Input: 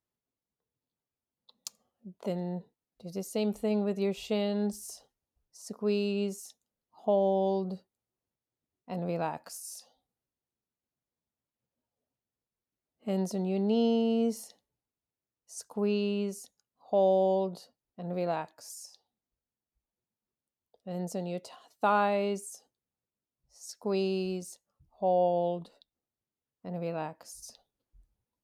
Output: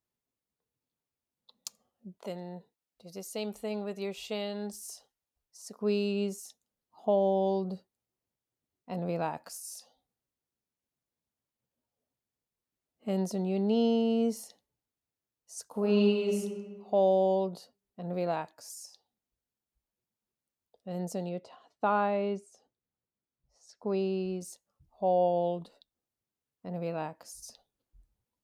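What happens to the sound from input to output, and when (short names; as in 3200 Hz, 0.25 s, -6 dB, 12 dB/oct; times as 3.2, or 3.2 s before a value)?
2.18–5.81 low shelf 490 Hz -9.5 dB
15.67–16.37 reverb throw, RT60 1.5 s, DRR -1 dB
21.29–24.41 tape spacing loss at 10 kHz 20 dB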